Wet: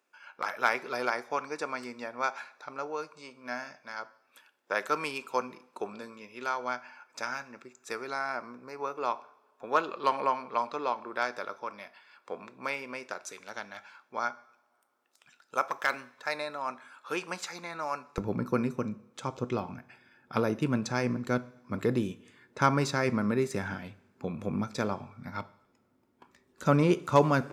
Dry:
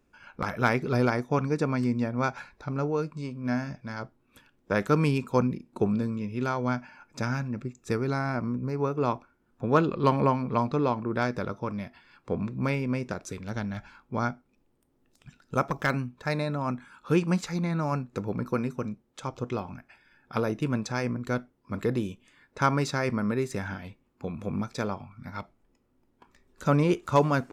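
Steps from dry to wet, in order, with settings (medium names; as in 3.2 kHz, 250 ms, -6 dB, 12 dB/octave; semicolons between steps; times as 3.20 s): high-pass 680 Hz 12 dB/octave, from 18.18 s 110 Hz; two-slope reverb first 0.72 s, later 3.2 s, from -22 dB, DRR 16 dB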